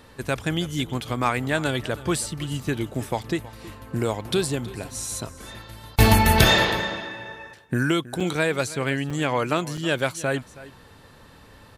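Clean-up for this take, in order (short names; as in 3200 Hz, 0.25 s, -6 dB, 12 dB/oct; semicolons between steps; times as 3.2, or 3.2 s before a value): interpolate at 8.2/9.1/9.77, 5.2 ms; inverse comb 0.321 s -18 dB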